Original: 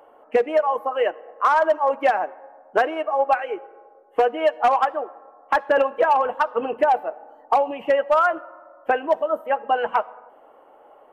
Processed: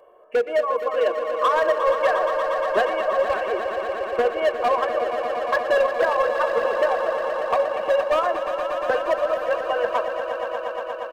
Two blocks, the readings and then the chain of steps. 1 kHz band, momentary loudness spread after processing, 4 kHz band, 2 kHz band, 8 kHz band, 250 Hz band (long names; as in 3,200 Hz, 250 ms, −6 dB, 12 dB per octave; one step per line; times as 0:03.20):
−3.0 dB, 6 LU, +3.5 dB, +1.0 dB, can't be measured, −3.5 dB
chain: parametric band 350 Hz +11 dB 0.24 octaves
comb filter 1.8 ms, depth 93%
hard clipping −10.5 dBFS, distortion −14 dB
echo that builds up and dies away 118 ms, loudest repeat 5, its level −10.5 dB
level −5 dB